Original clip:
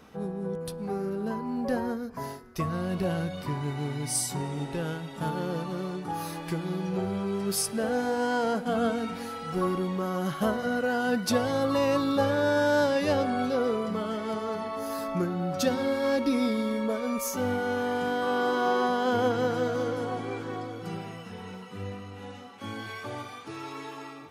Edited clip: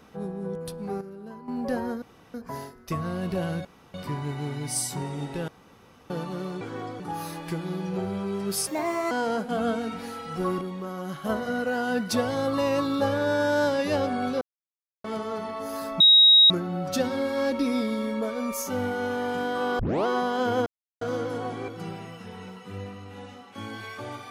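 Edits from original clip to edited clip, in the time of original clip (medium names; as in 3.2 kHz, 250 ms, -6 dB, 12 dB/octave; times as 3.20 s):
1.01–1.48 s: gain -10 dB
2.02 s: insert room tone 0.32 s
3.33 s: insert room tone 0.29 s
4.87–5.49 s: room tone
7.67–8.28 s: speed 138%
9.78–10.46 s: gain -4.5 dB
13.58–14.21 s: mute
15.17 s: add tone 3.8 kHz -11.5 dBFS 0.50 s
18.46 s: tape start 0.27 s
19.33–19.68 s: mute
20.35–20.74 s: move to 6.00 s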